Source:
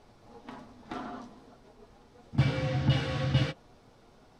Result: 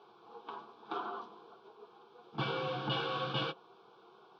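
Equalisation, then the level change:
loudspeaker in its box 300–4,200 Hz, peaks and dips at 370 Hz +5 dB, 570 Hz +7 dB, 1,100 Hz +6 dB, 1,500 Hz +7 dB, 2,300 Hz +7 dB, 3,300 Hz +7 dB
phaser with its sweep stopped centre 390 Hz, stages 8
0.0 dB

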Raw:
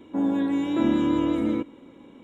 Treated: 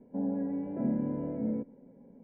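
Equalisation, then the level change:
Bessel low-pass filter 930 Hz, order 8
parametric band 710 Hz −4.5 dB 2 octaves
phaser with its sweep stopped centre 320 Hz, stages 6
0.0 dB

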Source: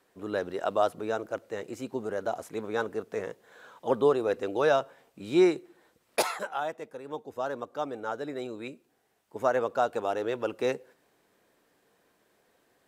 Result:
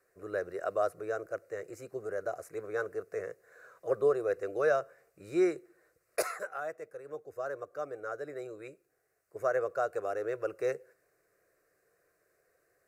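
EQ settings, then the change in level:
phaser with its sweep stopped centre 890 Hz, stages 6
−2.5 dB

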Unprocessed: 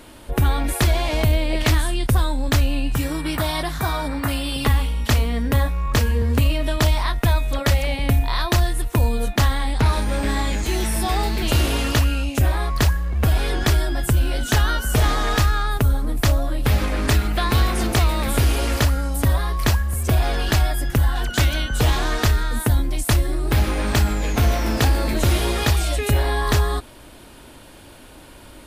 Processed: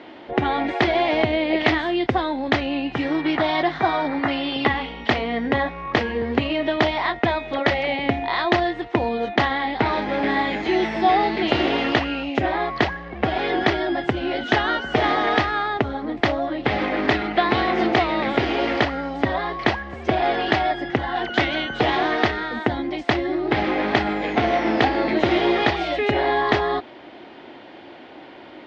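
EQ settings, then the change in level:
high-frequency loss of the air 150 metres
loudspeaker in its box 270–5,200 Hz, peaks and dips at 350 Hz +6 dB, 750 Hz +9 dB, 2,000 Hz +9 dB, 3,200 Hz +4 dB
low-shelf EQ 470 Hz +5.5 dB
0.0 dB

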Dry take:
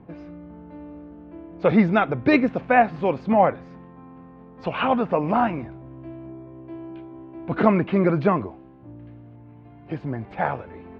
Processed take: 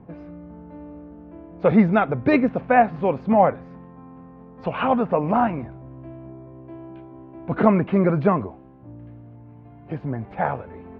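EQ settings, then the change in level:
parametric band 330 Hz −5 dB 0.27 octaves
high-shelf EQ 2,600 Hz −11.5 dB
+2.0 dB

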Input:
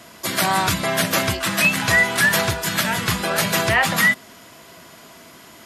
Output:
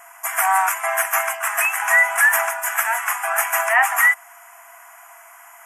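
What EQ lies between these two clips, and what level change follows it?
linear-phase brick-wall high-pass 660 Hz
Butterworth band-reject 4,100 Hz, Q 0.77
+3.5 dB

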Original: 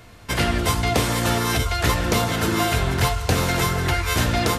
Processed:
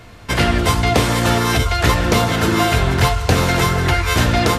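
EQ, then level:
high-shelf EQ 7,500 Hz −7 dB
+5.5 dB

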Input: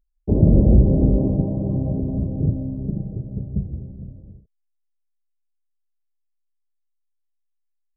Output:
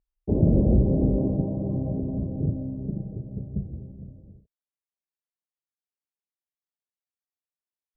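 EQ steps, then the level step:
high-pass filter 740 Hz 6 dB per octave
spectral tilt −4 dB per octave
−2.0 dB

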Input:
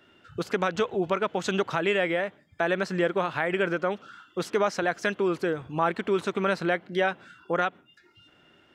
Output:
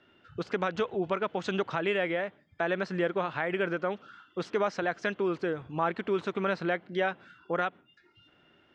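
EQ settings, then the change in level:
low-pass filter 6,100 Hz 12 dB per octave
high-frequency loss of the air 59 metres
−3.5 dB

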